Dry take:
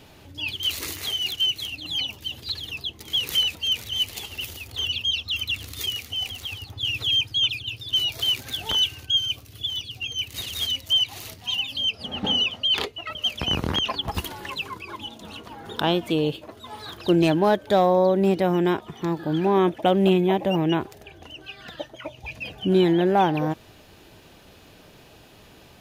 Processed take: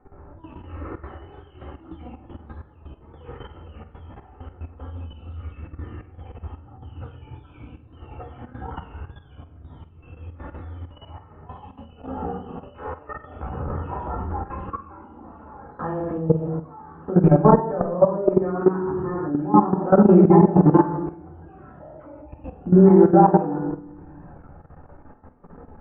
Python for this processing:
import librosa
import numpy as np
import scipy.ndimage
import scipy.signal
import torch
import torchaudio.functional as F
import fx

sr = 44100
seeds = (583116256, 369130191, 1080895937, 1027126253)

y = fx.chorus_voices(x, sr, voices=4, hz=0.18, base_ms=14, depth_ms=2.5, mix_pct=60)
y = fx.wow_flutter(y, sr, seeds[0], rate_hz=2.1, depth_cents=120.0)
y = fx.peak_eq(y, sr, hz=520.0, db=-3.0, octaves=0.95)
y = y + 0.33 * np.pad(y, (int(2.3 * sr / 1000.0), 0))[:len(y)]
y = fx.room_shoebox(y, sr, seeds[1], volume_m3=340.0, walls='mixed', distance_m=2.1)
y = fx.level_steps(y, sr, step_db=15)
y = scipy.signal.sosfilt(scipy.signal.butter(6, 1400.0, 'lowpass', fs=sr, output='sos'), y)
y = fx.low_shelf(y, sr, hz=110.0, db=-4.5)
y = fx.room_flutter(y, sr, wall_m=8.3, rt60_s=0.22)
y = fx.band_squash(y, sr, depth_pct=100, at=(1.61, 2.53))
y = y * librosa.db_to_amplitude(5.0)